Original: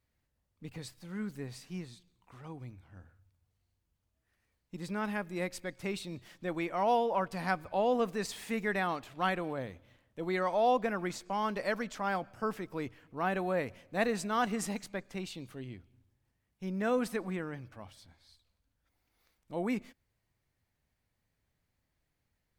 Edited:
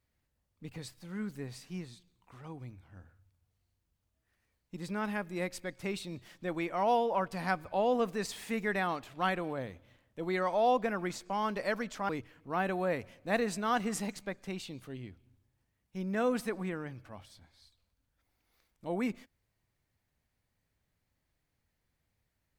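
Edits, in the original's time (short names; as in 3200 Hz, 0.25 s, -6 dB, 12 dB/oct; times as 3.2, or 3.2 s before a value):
12.09–12.76 cut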